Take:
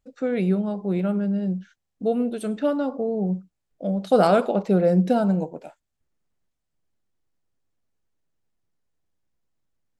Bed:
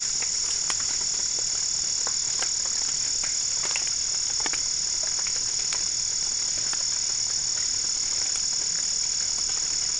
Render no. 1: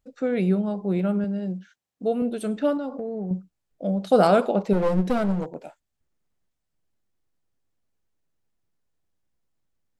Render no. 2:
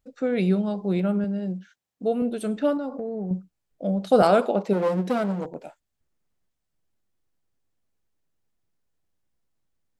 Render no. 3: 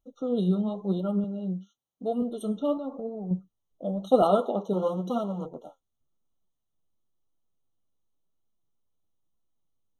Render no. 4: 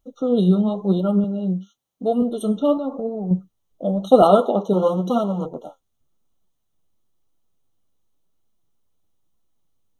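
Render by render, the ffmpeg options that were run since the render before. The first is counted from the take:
ffmpeg -i in.wav -filter_complex "[0:a]asettb=1/sr,asplit=3[link_01][link_02][link_03];[link_01]atrim=end=1.244[link_04];[link_02]atrim=start=1.24:end=2.22,asetpts=PTS-STARTPTS,afade=type=in:duration=0.004:curve=qsin,afade=type=out:start_time=0.976:duration=0.004:curve=qsin,highpass=frequency=240:poles=1[link_05];[link_03]atrim=start=2.216[link_06];[link_04][link_05]acrossfade=duration=0.004:curve1=hsin:curve2=qsin[link_07];[link_07][link_06]acrossfade=duration=0.004:curve1=qsin:curve2=hsin,asettb=1/sr,asplit=3[link_08][link_09][link_10];[link_08]atrim=end=2.774[link_11];[link_09]atrim=start=2.77:end=3.31,asetpts=PTS-STARTPTS,afade=type=in:duration=0.004:curve=qsin,afade=type=out:start_time=0.536:duration=0.004:curve=qsin,acompressor=threshold=-27dB:ratio=5:attack=3.2:release=140:knee=1:detection=peak[link_12];[link_10]atrim=start=3.306[link_13];[link_11][link_12]acrossfade=duration=0.004:curve1=hsin:curve2=qsin[link_14];[link_14][link_13]acrossfade=duration=0.004:curve1=qsin:curve2=hsin,asettb=1/sr,asplit=3[link_15][link_16][link_17];[link_15]atrim=end=4.734[link_18];[link_16]atrim=start=4.73:end=5.55,asetpts=PTS-STARTPTS,afade=type=in:duration=0.004:curve=qsin,afade=type=out:start_time=0.816:duration=0.004:curve=qsin,aeval=exprs='clip(val(0),-1,0.0473)':channel_layout=same[link_19];[link_17]atrim=start=5.546[link_20];[link_18][link_19]acrossfade=duration=0.004:curve1=hsin:curve2=qsin[link_21];[link_21][link_20]acrossfade=duration=0.004:curve1=qsin:curve2=hsin" out.wav
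ffmpeg -i in.wav -filter_complex "[0:a]asettb=1/sr,asplit=3[link_01][link_02][link_03];[link_01]atrim=end=0.384[link_04];[link_02]atrim=start=0.38:end=1,asetpts=PTS-STARTPTS,afade=type=in:duration=0.004:curve=qsin,afade=type=out:start_time=0.616:duration=0.004:curve=qsin,equalizer=frequency=4200:width=0.91:gain=7[link_05];[link_03]atrim=start=0.996[link_06];[link_04][link_05]acrossfade=duration=0.004:curve1=hsin:curve2=qsin[link_07];[link_07][link_06]acrossfade=duration=0.004:curve1=qsin:curve2=hsin,asettb=1/sr,asplit=3[link_08][link_09][link_10];[link_08]atrim=end=2.744[link_11];[link_09]atrim=start=2.74:end=3.25,asetpts=PTS-STARTPTS,afade=type=in:duration=0.004:curve=qsin,afade=type=out:start_time=0.506:duration=0.004:curve=qsin,equalizer=frequency=3100:width_type=o:width=0.43:gain=-5.5[link_12];[link_10]atrim=start=3.246[link_13];[link_11][link_12]acrossfade=duration=0.004:curve1=hsin:curve2=qsin[link_14];[link_14][link_13]acrossfade=duration=0.004:curve1=qsin:curve2=hsin,asettb=1/sr,asplit=3[link_15][link_16][link_17];[link_15]atrim=end=4.224[link_18];[link_16]atrim=start=4.22:end=5.45,asetpts=PTS-STARTPTS,afade=type=in:duration=0.004:curve=qsin,afade=type=out:start_time=1.226:duration=0.004:curve=qsin,highpass=190[link_19];[link_17]atrim=start=5.446[link_20];[link_18][link_19]acrossfade=duration=0.004:curve1=hsin:curve2=qsin[link_21];[link_21][link_20]acrossfade=duration=0.004:curve1=qsin:curve2=hsin" out.wav
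ffmpeg -i in.wav -af "flanger=delay=2.7:depth=8.9:regen=53:speed=0.95:shape=triangular,afftfilt=real='re*eq(mod(floor(b*sr/1024/1400),2),0)':imag='im*eq(mod(floor(b*sr/1024/1400),2),0)':win_size=1024:overlap=0.75" out.wav
ffmpeg -i in.wav -af "volume=8.5dB,alimiter=limit=-1dB:level=0:latency=1" out.wav

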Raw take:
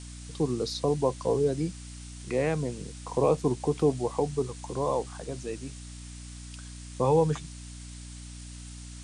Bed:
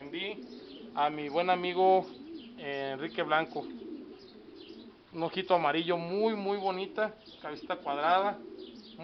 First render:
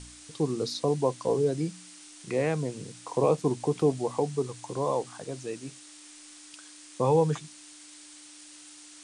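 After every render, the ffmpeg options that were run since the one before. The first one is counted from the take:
ffmpeg -i in.wav -af "bandreject=frequency=60:width_type=h:width=4,bandreject=frequency=120:width_type=h:width=4,bandreject=frequency=180:width_type=h:width=4,bandreject=frequency=240:width_type=h:width=4" out.wav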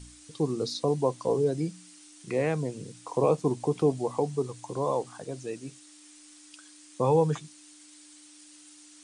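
ffmpeg -i in.wav -af "afftdn=noise_reduction=6:noise_floor=-50" out.wav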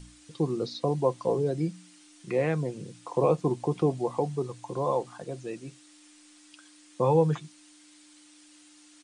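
ffmpeg -i in.wav -filter_complex "[0:a]acrossover=split=4300[link_01][link_02];[link_02]acompressor=threshold=-57dB:ratio=4:attack=1:release=60[link_03];[link_01][link_03]amix=inputs=2:normalize=0,aecho=1:1:5.7:0.32" out.wav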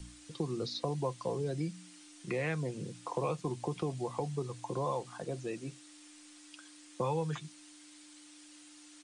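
ffmpeg -i in.wav -filter_complex "[0:a]acrossover=split=140|1300|1700[link_01][link_02][link_03][link_04];[link_01]alimiter=level_in=14.5dB:limit=-24dB:level=0:latency=1,volume=-14.5dB[link_05];[link_02]acompressor=threshold=-34dB:ratio=6[link_06];[link_05][link_06][link_03][link_04]amix=inputs=4:normalize=0" out.wav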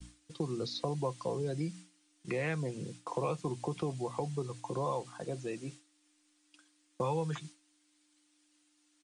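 ffmpeg -i in.wav -af "agate=range=-33dB:threshold=-44dB:ratio=3:detection=peak" out.wav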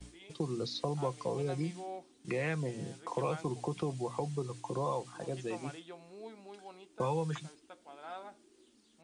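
ffmpeg -i in.wav -i bed.wav -filter_complex "[1:a]volume=-19dB[link_01];[0:a][link_01]amix=inputs=2:normalize=0" out.wav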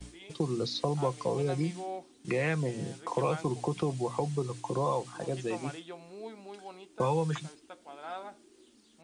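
ffmpeg -i in.wav -af "volume=4.5dB" out.wav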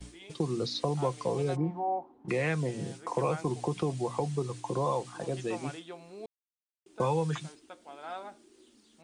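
ffmpeg -i in.wav -filter_complex "[0:a]asplit=3[link_01][link_02][link_03];[link_01]afade=type=out:start_time=1.55:duration=0.02[link_04];[link_02]lowpass=frequency=890:width_type=q:width=4.7,afade=type=in:start_time=1.55:duration=0.02,afade=type=out:start_time=2.28:duration=0.02[link_05];[link_03]afade=type=in:start_time=2.28:duration=0.02[link_06];[link_04][link_05][link_06]amix=inputs=3:normalize=0,asettb=1/sr,asplit=3[link_07][link_08][link_09];[link_07]atrim=end=2.974[link_10];[link_08]atrim=start=2.97:end=3.47,asetpts=PTS-STARTPTS,afade=type=in:duration=0.004:curve=qsin,afade=type=out:start_time=0.496:duration=0.004:curve=qsin,equalizer=frequency=3400:width=2.5:gain=-5.5[link_11];[link_09]atrim=start=3.466[link_12];[link_10][link_11]acrossfade=duration=0.004:curve1=hsin:curve2=qsin[link_13];[link_13][link_12]acrossfade=duration=0.004:curve1=qsin:curve2=hsin,asplit=3[link_14][link_15][link_16];[link_14]atrim=end=6.26,asetpts=PTS-STARTPTS,afade=type=out:start_time=6.256:duration=0.004:curve=hsin[link_17];[link_15]atrim=start=6.26:end=6.86,asetpts=PTS-STARTPTS,volume=0[link_18];[link_16]atrim=start=6.86,asetpts=PTS-STARTPTS,afade=type=in:duration=0.004:curve=hsin[link_19];[link_17][link_18][link_19]concat=n=3:v=0:a=1" out.wav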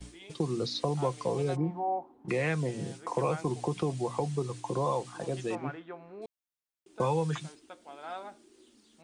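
ffmpeg -i in.wav -filter_complex "[0:a]asettb=1/sr,asplit=3[link_01][link_02][link_03];[link_01]atrim=end=5.554[link_04];[link_02]atrim=start=5.55:end=6.22,asetpts=PTS-STARTPTS,afade=type=in:duration=0.004:curve=qsin,afade=type=out:start_time=0.666:duration=0.004:curve=qsin,lowpass=frequency=1600:width_type=q:width=1.6[link_05];[link_03]atrim=start=6.216[link_06];[link_04][link_05]acrossfade=duration=0.004:curve1=hsin:curve2=qsin[link_07];[link_07][link_06]acrossfade=duration=0.004:curve1=qsin:curve2=hsin" out.wav

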